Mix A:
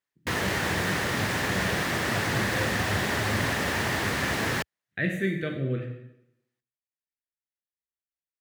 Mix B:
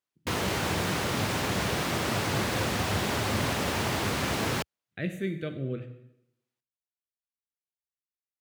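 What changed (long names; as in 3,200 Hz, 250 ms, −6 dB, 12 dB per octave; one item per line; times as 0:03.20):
speech: send −7.5 dB
master: add parametric band 1,800 Hz −9.5 dB 0.36 octaves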